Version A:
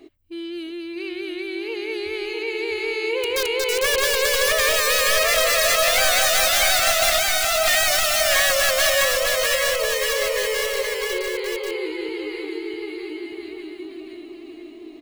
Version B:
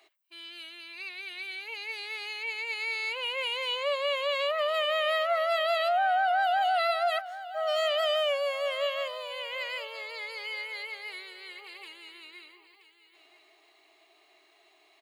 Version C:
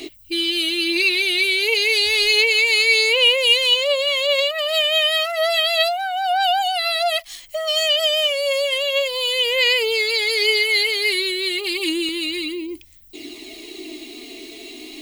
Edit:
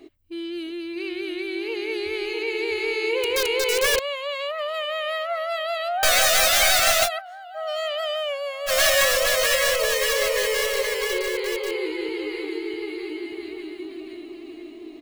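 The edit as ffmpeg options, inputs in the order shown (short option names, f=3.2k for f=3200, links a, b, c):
-filter_complex "[1:a]asplit=2[a][b];[0:a]asplit=3[c][d][e];[c]atrim=end=3.992[f];[a]atrim=start=3.988:end=6.032[g];[d]atrim=start=6.028:end=7.09[h];[b]atrim=start=7.03:end=8.72[i];[e]atrim=start=8.66[j];[f][g]acrossfade=d=0.004:c1=hsin:c2=hsin[k];[k][h]acrossfade=d=0.004:c1=hsin:c2=hsin[l];[l][i]acrossfade=d=0.06:c1=tri:c2=tri[m];[m][j]acrossfade=d=0.06:c1=tri:c2=tri"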